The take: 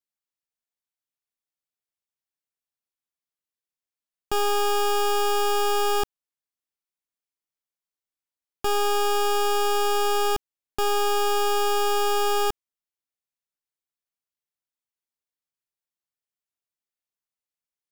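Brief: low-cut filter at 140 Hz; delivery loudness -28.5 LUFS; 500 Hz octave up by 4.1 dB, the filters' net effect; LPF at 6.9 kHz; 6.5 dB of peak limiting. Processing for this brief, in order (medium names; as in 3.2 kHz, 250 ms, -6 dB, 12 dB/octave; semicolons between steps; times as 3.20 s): high-pass 140 Hz; low-pass 6.9 kHz; peaking EQ 500 Hz +5.5 dB; peak limiter -21 dBFS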